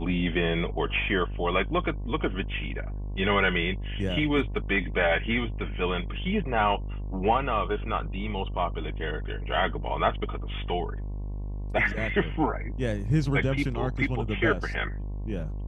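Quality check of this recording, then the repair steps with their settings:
mains buzz 50 Hz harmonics 22 −33 dBFS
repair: hum removal 50 Hz, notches 22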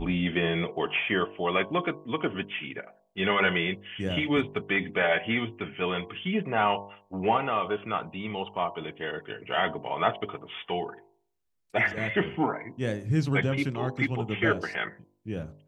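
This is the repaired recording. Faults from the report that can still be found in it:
none of them is left

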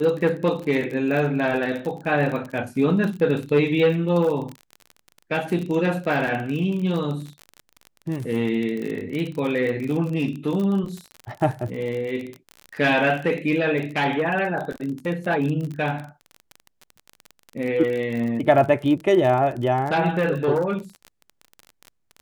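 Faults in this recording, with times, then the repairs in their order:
surface crackle 35 per second −28 dBFS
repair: click removal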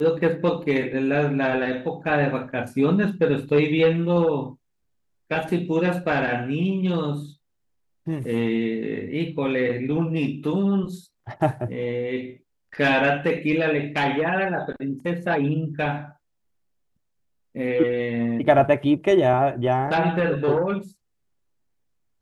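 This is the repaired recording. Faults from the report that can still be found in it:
none of them is left

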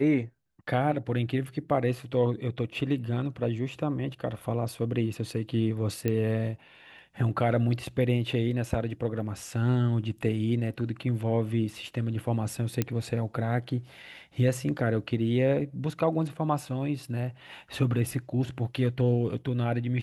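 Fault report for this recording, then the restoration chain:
0:06.08: click −15 dBFS
0:12.82: click −12 dBFS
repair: click removal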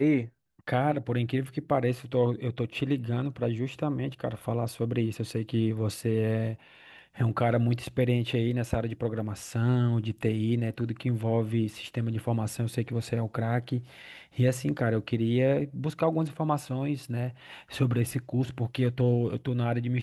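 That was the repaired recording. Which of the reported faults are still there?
none of them is left

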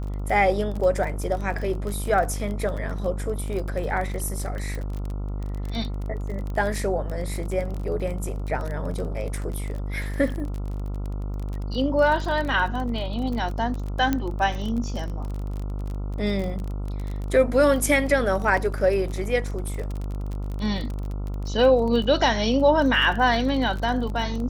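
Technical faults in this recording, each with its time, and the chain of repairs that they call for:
mains buzz 50 Hz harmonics 28 −29 dBFS
surface crackle 28 per second −29 dBFS
0:04.75: click
0:14.13: click −10 dBFS
0:18.57: drop-out 4.3 ms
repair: click removal
hum removal 50 Hz, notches 28
repair the gap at 0:18.57, 4.3 ms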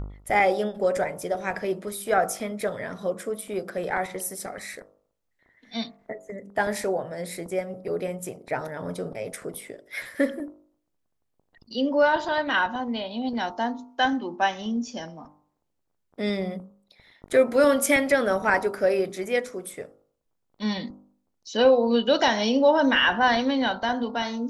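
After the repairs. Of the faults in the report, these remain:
none of them is left

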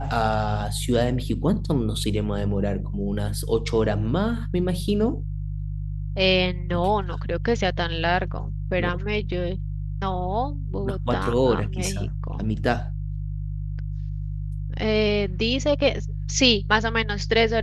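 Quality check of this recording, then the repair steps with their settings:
mains hum 50 Hz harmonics 3 −29 dBFS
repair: hum removal 50 Hz, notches 3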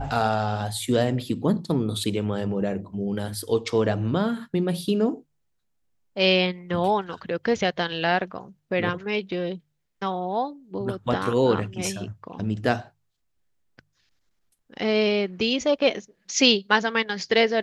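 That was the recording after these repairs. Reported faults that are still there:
none of them is left

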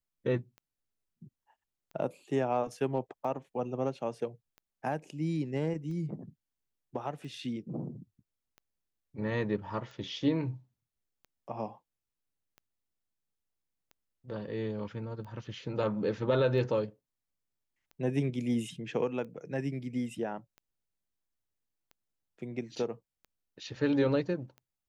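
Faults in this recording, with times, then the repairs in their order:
scratch tick 45 rpm −37 dBFS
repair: click removal

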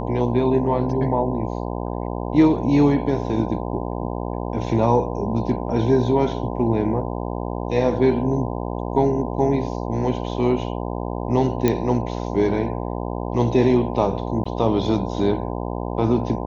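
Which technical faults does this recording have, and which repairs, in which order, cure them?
mains buzz 60 Hz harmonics 17 −27 dBFS
0:11.68: click −6 dBFS
0:14.44–0:14.46: drop-out 15 ms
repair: click removal
hum removal 60 Hz, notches 17
repair the gap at 0:14.44, 15 ms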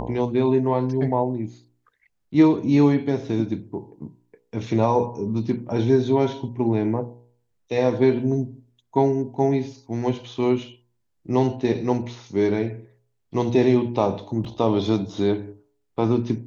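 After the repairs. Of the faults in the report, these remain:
none of them is left

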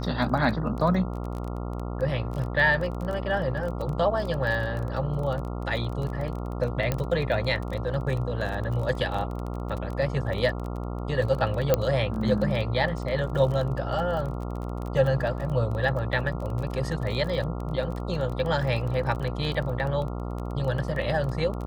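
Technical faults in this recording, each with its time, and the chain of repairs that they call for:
mains buzz 60 Hz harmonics 23 −32 dBFS
surface crackle 23 per second −31 dBFS
0:06.92: click −12 dBFS
0:11.74: click −7 dBFS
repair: click removal
hum removal 60 Hz, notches 23

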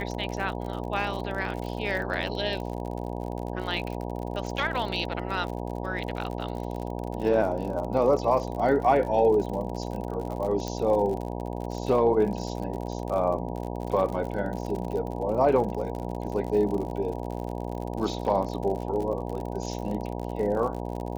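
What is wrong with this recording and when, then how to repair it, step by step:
mains buzz 60 Hz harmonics 16 −33 dBFS
surface crackle 54 per second −33 dBFS
0:10.68: click −19 dBFS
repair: click removal
hum removal 60 Hz, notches 16

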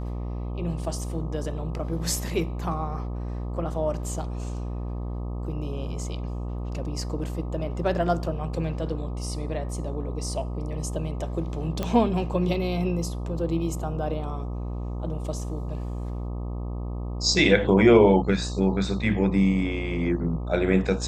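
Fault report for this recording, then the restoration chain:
mains buzz 60 Hz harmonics 21 −31 dBFS
0:11.83: click −14 dBFS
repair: click removal
hum removal 60 Hz, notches 21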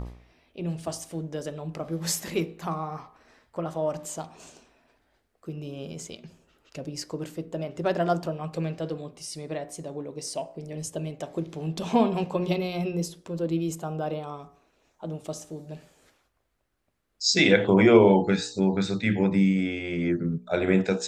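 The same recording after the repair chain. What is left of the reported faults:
none of them is left

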